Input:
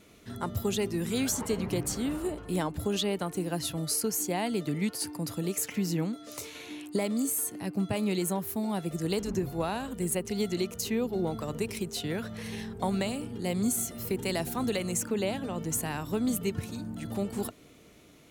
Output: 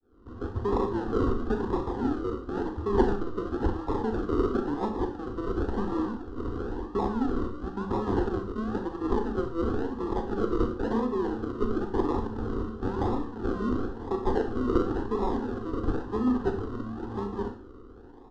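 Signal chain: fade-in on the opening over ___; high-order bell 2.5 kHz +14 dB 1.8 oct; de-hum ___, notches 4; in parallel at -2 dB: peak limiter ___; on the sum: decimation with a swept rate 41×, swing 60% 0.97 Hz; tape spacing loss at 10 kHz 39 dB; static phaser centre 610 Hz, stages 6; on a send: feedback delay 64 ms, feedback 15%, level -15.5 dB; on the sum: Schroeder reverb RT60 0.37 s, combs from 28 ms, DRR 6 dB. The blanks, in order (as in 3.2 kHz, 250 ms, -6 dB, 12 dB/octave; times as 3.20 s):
0.52 s, 119.1 Hz, -17.5 dBFS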